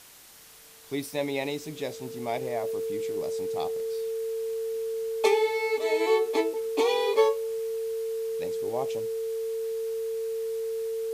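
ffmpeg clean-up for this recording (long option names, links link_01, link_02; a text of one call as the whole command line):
ffmpeg -i in.wav -af "adeclick=threshold=4,bandreject=frequency=450:width=30,afwtdn=0.0032" out.wav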